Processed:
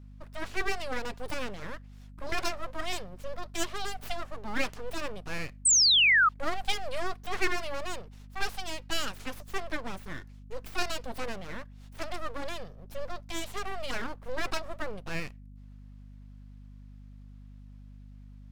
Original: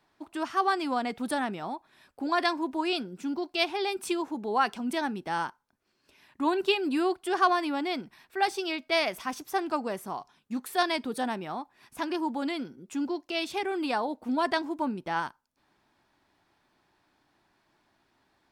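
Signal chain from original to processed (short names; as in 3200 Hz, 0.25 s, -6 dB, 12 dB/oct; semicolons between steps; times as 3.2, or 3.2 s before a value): full-wave rectifier; painted sound fall, 5.65–6.29, 1200–8700 Hz -19 dBFS; hum 50 Hz, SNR 17 dB; gain -2 dB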